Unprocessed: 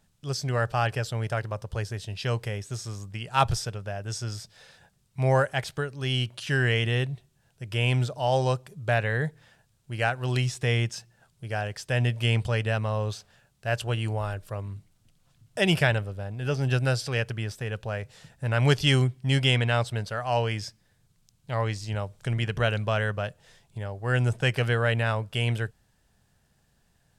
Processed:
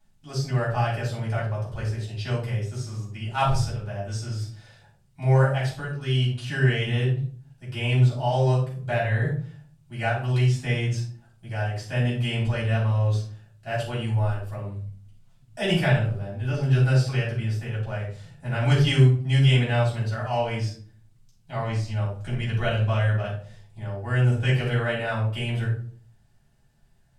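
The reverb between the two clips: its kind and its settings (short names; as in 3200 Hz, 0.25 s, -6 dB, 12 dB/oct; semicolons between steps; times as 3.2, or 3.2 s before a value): shoebox room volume 430 m³, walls furnished, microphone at 8.1 m; gain -12.5 dB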